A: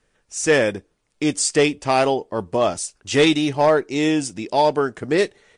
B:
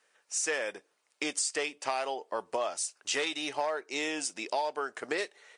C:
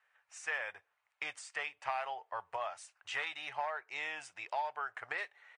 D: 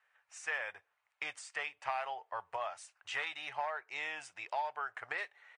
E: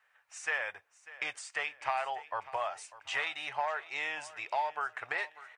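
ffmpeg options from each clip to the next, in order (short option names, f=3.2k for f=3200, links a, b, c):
-af "highpass=650,bandreject=f=3.4k:w=26,acompressor=threshold=-29dB:ratio=6"
-af "firequalizer=gain_entry='entry(110,0);entry(220,-30);entry(750,-5);entry(1900,-3);entry(4900,-20);entry(9700,-22)':delay=0.05:min_phase=1,volume=1.5dB"
-af anull
-af "aecho=1:1:595|1190|1785:0.133|0.052|0.0203,volume=4dB"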